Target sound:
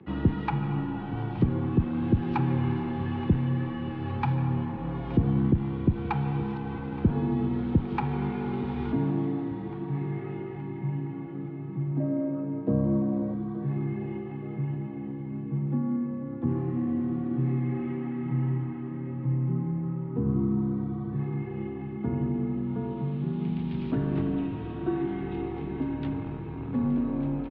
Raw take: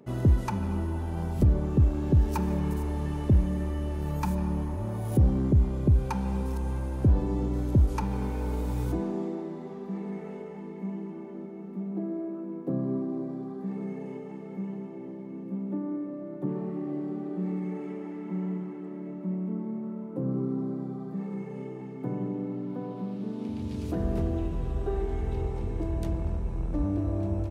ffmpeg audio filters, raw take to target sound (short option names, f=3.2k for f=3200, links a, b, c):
-af "asetnsamples=n=441:p=0,asendcmd='12 equalizer g 4;13.34 equalizer g -12.5',equalizer=f=640:t=o:w=0.34:g=-13,aecho=1:1:872|1744|2616|3488:0.133|0.0667|0.0333|0.0167,highpass=f=160:t=q:w=0.5412,highpass=f=160:t=q:w=1.307,lowpass=f=3.6k:t=q:w=0.5176,lowpass=f=3.6k:t=q:w=0.7071,lowpass=f=3.6k:t=q:w=1.932,afreqshift=-53,volume=5dB"